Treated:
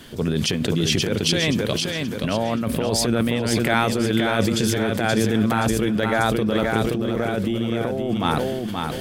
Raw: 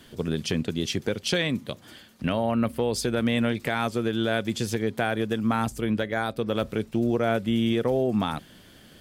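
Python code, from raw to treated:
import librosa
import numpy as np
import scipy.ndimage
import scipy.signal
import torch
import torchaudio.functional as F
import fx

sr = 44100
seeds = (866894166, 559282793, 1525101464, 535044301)

p1 = fx.over_compress(x, sr, threshold_db=-27.0, ratio=-0.5)
p2 = p1 + fx.echo_feedback(p1, sr, ms=526, feedback_pct=37, wet_db=-5.0, dry=0)
p3 = fx.sustainer(p2, sr, db_per_s=26.0)
y = p3 * librosa.db_to_amplitude(5.0)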